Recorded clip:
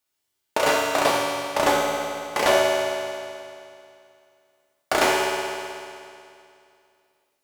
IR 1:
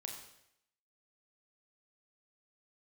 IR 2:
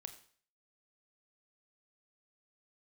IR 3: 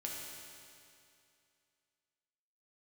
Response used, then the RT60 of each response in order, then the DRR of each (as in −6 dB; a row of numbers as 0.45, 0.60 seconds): 3; 0.75, 0.50, 2.5 seconds; 1.0, 7.5, −3.0 decibels